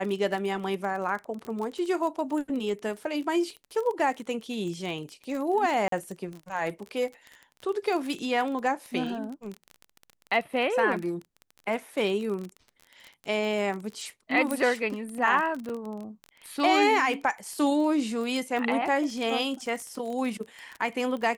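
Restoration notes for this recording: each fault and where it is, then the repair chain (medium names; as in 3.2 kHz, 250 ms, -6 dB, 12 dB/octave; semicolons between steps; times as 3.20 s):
crackle 25 per s -32 dBFS
5.88–5.92 s: dropout 43 ms
14.51 s: pop -15 dBFS
15.69–15.70 s: dropout 5.3 ms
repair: de-click; interpolate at 5.88 s, 43 ms; interpolate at 15.69 s, 5.3 ms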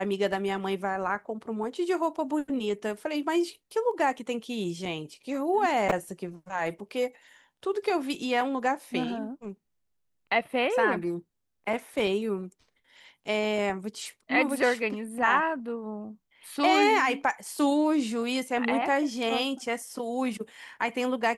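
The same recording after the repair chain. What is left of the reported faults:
14.51 s: pop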